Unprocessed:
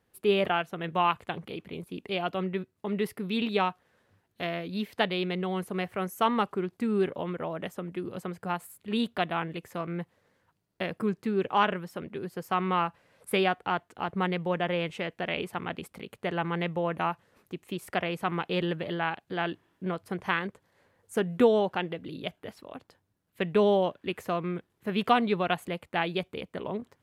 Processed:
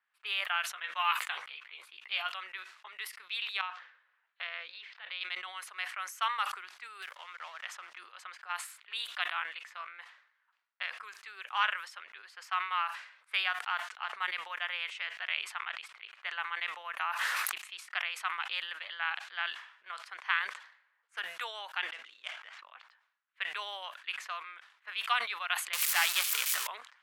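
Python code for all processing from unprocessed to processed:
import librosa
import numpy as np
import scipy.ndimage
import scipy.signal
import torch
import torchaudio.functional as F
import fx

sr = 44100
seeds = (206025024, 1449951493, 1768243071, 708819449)

y = fx.chain(x, sr, fx.high_shelf(hz=12000.0, db=8.5),
    fx.doubler(ms=14.0, db=-6.5), at=(0.74, 2.3))
y = fx.chain(y, sr, fx.lowpass(hz=4000.0, slope=12),
    fx.peak_eq(hz=500.0, db=8.0, octaves=0.21),
    fx.over_compress(threshold_db=-33.0, ratio=-1.0), at=(3.61, 5.21))
y = fx.chain(y, sr, fx.law_mismatch(coded='A'),
    fx.band_squash(depth_pct=70), at=(7.02, 7.98))
y = fx.chain(y, sr, fx.high_shelf(hz=3800.0, db=-5.5),
    fx.env_flatten(amount_pct=100), at=(16.96, 17.58))
y = fx.chain(y, sr, fx.median_filter(points=9),
    fx.sustainer(db_per_s=80.0), at=(21.93, 22.71))
y = fx.chain(y, sr, fx.crossing_spikes(level_db=-25.5),
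    fx.power_curve(exponent=0.5), at=(25.73, 26.67))
y = fx.env_lowpass(y, sr, base_hz=2200.0, full_db=-24.0)
y = scipy.signal.sosfilt(scipy.signal.butter(4, 1200.0, 'highpass', fs=sr, output='sos'), y)
y = fx.sustainer(y, sr, db_per_s=91.0)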